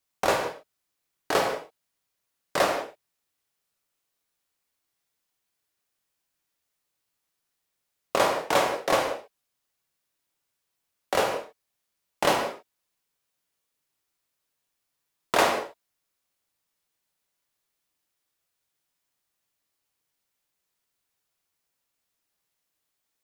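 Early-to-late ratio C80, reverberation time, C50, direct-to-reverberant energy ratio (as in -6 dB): 7.5 dB, not exponential, 5.0 dB, 1.5 dB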